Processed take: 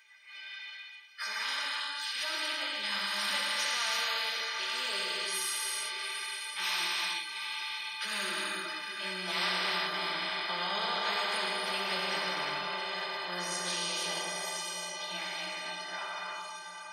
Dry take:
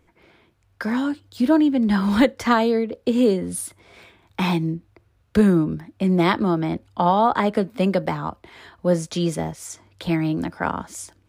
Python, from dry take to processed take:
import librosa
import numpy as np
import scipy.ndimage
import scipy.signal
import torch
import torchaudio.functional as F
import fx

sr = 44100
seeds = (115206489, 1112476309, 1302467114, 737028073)

p1 = fx.fade_out_tail(x, sr, length_s=3.62)
p2 = scipy.signal.sosfilt(scipy.signal.butter(2, 120.0, 'highpass', fs=sr, output='sos'), p1)
p3 = fx.tilt_shelf(p2, sr, db=-7.0, hz=1500.0)
p4 = fx.transient(p3, sr, attack_db=-6, sustain_db=0)
p5 = scipy.signal.savgol_filter(p4, 15, 4, mode='constant')
p6 = fx.filter_sweep_highpass(p5, sr, from_hz=1800.0, to_hz=750.0, start_s=5.21, end_s=7.69, q=1.2)
p7 = fx.stretch_vocoder_free(p6, sr, factor=1.5)
p8 = fx.stiff_resonator(p7, sr, f0_hz=180.0, decay_s=0.3, stiffness=0.03)
p9 = p8 + fx.echo_diffused(p8, sr, ms=799, feedback_pct=46, wet_db=-14, dry=0)
p10 = fx.rev_gated(p9, sr, seeds[0], gate_ms=400, shape='flat', drr_db=-2.0)
y = fx.spectral_comp(p10, sr, ratio=4.0)